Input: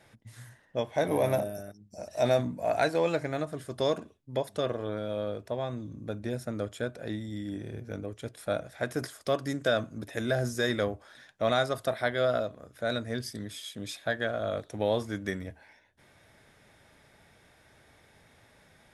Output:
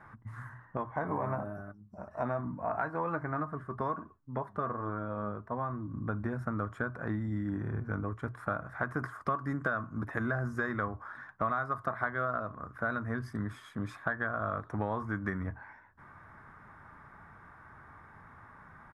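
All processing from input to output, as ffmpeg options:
ffmpeg -i in.wav -filter_complex "[0:a]asettb=1/sr,asplit=3[link_01][link_02][link_03];[link_01]atrim=end=0.774[link_04];[link_02]atrim=start=0.77:end=5.94,asetpts=PTS-STARTPTS,afade=type=in:duration=0.004:curve=qsin,afade=type=out:start_time=5.166:duration=0.004:curve=qsin,highshelf=frequency=2600:gain=-9,flanger=delay=2.6:depth=2.8:regen=72:speed=1.2:shape=triangular[link_05];[link_03]atrim=start=5.936[link_06];[link_04][link_05]acrossfade=duration=0.004:curve1=hsin:curve2=qsin[link_07];[link_07][link_06]acrossfade=duration=0.004:curve1=qsin:curve2=hsin,firequalizer=gain_entry='entry(130,0);entry(550,-11);entry(1100,11);entry(2500,-16);entry(3500,-24)':delay=0.05:min_phase=1,acompressor=threshold=-36dB:ratio=6,bandreject=frequency=60:width_type=h:width=6,bandreject=frequency=120:width_type=h:width=6,volume=7dB" out.wav

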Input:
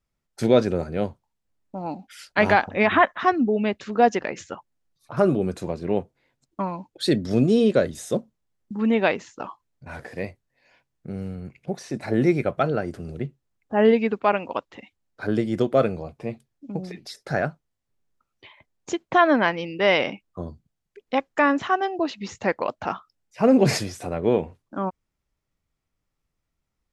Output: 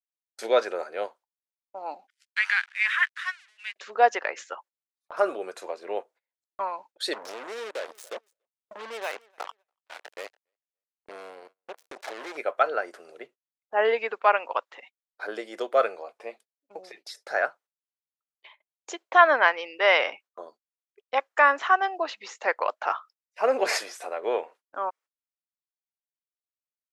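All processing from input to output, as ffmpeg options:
ffmpeg -i in.wav -filter_complex "[0:a]asettb=1/sr,asplit=3[link_01][link_02][link_03];[link_01]atrim=end=2.104[link_04];[link_02]atrim=start=2.1:end=3.76,asetpts=PTS-STARTPTS,afade=type=in:duration=0.004:curve=qsin,afade=type=out:start_time=1.656:duration=0.004:curve=qsin,aeval=exprs='sgn(val(0))*max(abs(val(0))-0.00794,0)':channel_layout=same,asuperpass=centerf=4600:order=8:qfactor=0.51[link_05];[link_03]atrim=start=3.756[link_06];[link_04][link_05]acrossfade=duration=0.004:curve1=hsin:curve2=qsin[link_07];[link_07][link_06]acrossfade=duration=0.004:curve1=qsin:curve2=hsin,asettb=1/sr,asplit=3[link_08][link_09][link_10];[link_08]atrim=end=7.134[link_11];[link_09]atrim=start=7.13:end=12.37,asetpts=PTS-STARTPTS,afade=type=in:duration=0.004:curve=qsin,afade=type=out:start_time=5.236:duration=0.004:curve=qsin,acompressor=threshold=-25dB:ratio=5:attack=3.2:release=140:knee=1:detection=peak,acrusher=bits=4:mix=0:aa=0.5,aecho=1:1:285|570:0.0631|0.0133,atrim=end_sample=231084[link_12];[link_10]atrim=start=12.366[link_13];[link_11][link_12]acrossfade=duration=0.004:curve1=hsin:curve2=qsin[link_14];[link_14][link_13]acrossfade=duration=0.004:curve1=qsin:curve2=hsin,highpass=frequency=480:width=0.5412,highpass=frequency=480:width=1.3066,agate=range=-25dB:threshold=-50dB:ratio=16:detection=peak,adynamicequalizer=threshold=0.0178:dfrequency=1400:dqfactor=0.98:tfrequency=1400:tqfactor=0.98:attack=5:release=100:ratio=0.375:range=3.5:mode=boostabove:tftype=bell,volume=-2.5dB" out.wav

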